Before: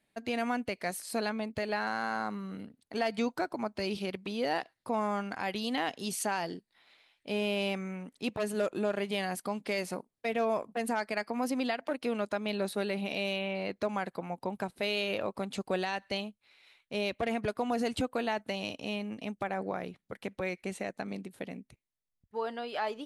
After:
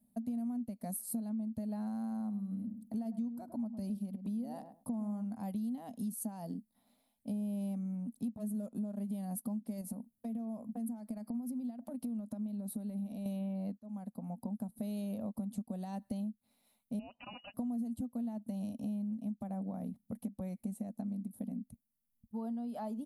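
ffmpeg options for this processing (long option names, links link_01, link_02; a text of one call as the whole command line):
ffmpeg -i in.wav -filter_complex "[0:a]asettb=1/sr,asplit=3[link_01][link_02][link_03];[link_01]atrim=end=2.114[link_04];[link_02]atrim=start=2.11:end=5.24,asetpts=PTS-STARTPTS,afade=type=in:duration=0.004:curve=qsin,afade=type=out:start_time=3.126:duration=0.004:curve=qsin,asplit=2[link_05][link_06];[link_06]adelay=105,lowpass=frequency=860:poles=1,volume=-11dB,asplit=2[link_07][link_08];[link_08]adelay=105,lowpass=frequency=860:poles=1,volume=0.16[link_09];[link_05][link_07][link_09]amix=inputs=3:normalize=0,atrim=end_sample=138033[link_10];[link_03]atrim=start=5.236[link_11];[link_04][link_10]acrossfade=duration=0.004:curve1=hsin:curve2=qsin[link_12];[link_12][link_11]acrossfade=duration=0.004:curve1=qsin:curve2=hsin,asettb=1/sr,asplit=3[link_13][link_14][link_15];[link_13]atrim=end=9.814[link_16];[link_14]atrim=start=9.81:end=13.26,asetpts=PTS-STARTPTS,afade=type=in:duration=0.004:curve=qsin,afade=type=out:start_time=3.446:duration=0.004:curve=qsin,acompressor=threshold=-38dB:ratio=5:attack=3.2:release=140:knee=1:detection=peak[link_17];[link_15]atrim=start=13.256[link_18];[link_16][link_17]acrossfade=duration=0.004:curve1=hsin:curve2=qsin[link_19];[link_19][link_18]acrossfade=duration=0.004:curve1=qsin:curve2=hsin,asettb=1/sr,asplit=3[link_20][link_21][link_22];[link_20]atrim=end=16.994[link_23];[link_21]atrim=start=16.99:end=17.54,asetpts=PTS-STARTPTS,afade=type=in:duration=0.004:curve=qsin,afade=type=out:start_time=0.546:duration=0.004:curve=qsin,lowpass=frequency=2600:width_type=q:width=0.5098,lowpass=frequency=2600:width_type=q:width=0.6013,lowpass=frequency=2600:width_type=q:width=0.9,lowpass=frequency=2600:width_type=q:width=2.563,afreqshift=-3100[link_24];[link_22]atrim=start=17.536[link_25];[link_23][link_24]acrossfade=duration=0.004:curve1=hsin:curve2=qsin[link_26];[link_26][link_25]acrossfade=duration=0.004:curve1=qsin:curve2=hsin,asplit=2[link_27][link_28];[link_27]atrim=end=13.78,asetpts=PTS-STARTPTS,afade=type=out:start_time=13.776:duration=0.004:curve=hsin[link_29];[link_28]atrim=start=13.78,asetpts=PTS-STARTPTS,afade=type=in:duration=0.95[link_30];[link_29][link_30]concat=n=2:v=0:a=1,firequalizer=gain_entry='entry(160,0);entry(230,14);entry(340,-16);entry(640,-6);entry(1500,-24);entry(2500,-27);entry(3600,-20);entry(5800,-14);entry(11000,6)':delay=0.05:min_phase=1,acompressor=threshold=-40dB:ratio=6,volume=3.5dB" out.wav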